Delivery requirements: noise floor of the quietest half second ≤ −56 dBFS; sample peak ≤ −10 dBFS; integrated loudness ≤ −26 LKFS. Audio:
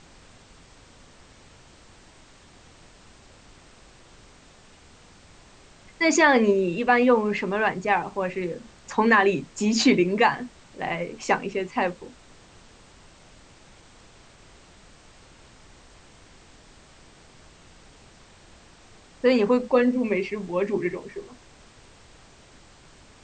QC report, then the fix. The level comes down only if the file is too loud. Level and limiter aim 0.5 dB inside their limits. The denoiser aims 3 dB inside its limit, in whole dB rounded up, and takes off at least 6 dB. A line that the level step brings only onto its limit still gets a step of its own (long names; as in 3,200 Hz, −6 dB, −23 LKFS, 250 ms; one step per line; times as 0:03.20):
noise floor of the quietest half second −52 dBFS: out of spec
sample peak −5.5 dBFS: out of spec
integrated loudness −23.0 LKFS: out of spec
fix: broadband denoise 6 dB, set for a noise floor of −52 dBFS
level −3.5 dB
brickwall limiter −10.5 dBFS